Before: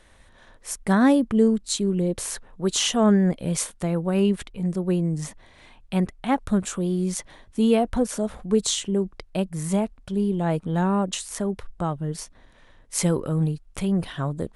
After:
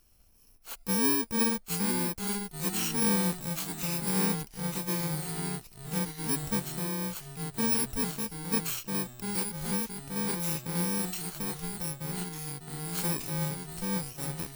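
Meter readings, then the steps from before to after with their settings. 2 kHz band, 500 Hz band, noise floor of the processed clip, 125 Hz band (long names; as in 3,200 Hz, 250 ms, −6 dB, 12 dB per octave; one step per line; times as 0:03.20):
−3.0 dB, −12.5 dB, −57 dBFS, −8.5 dB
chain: samples in bit-reversed order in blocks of 64 samples
delay with pitch and tempo change per echo 710 ms, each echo −2 semitones, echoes 3, each echo −6 dB
level −9 dB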